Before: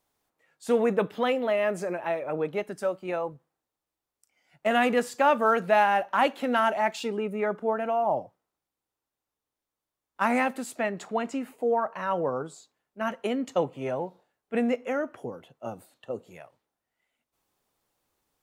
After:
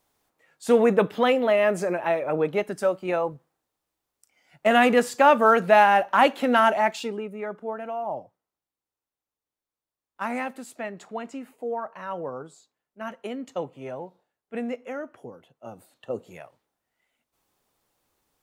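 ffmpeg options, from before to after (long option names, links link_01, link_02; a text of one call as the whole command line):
ffmpeg -i in.wav -af "volume=13.5dB,afade=type=out:start_time=6.69:duration=0.61:silence=0.316228,afade=type=in:start_time=15.67:duration=0.49:silence=0.375837" out.wav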